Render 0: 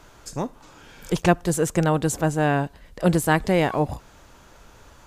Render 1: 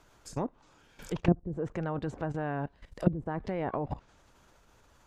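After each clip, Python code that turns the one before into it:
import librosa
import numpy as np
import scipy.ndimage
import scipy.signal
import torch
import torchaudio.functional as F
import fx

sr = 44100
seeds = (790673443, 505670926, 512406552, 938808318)

y = fx.level_steps(x, sr, step_db=15)
y = fx.hpss(y, sr, part='harmonic', gain_db=-3)
y = fx.env_lowpass_down(y, sr, base_hz=320.0, full_db=-23.5)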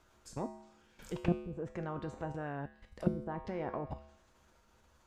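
y = fx.comb_fb(x, sr, f0_hz=72.0, decay_s=0.78, harmonics='odd', damping=0.0, mix_pct=80)
y = F.gain(torch.from_numpy(y), 6.0).numpy()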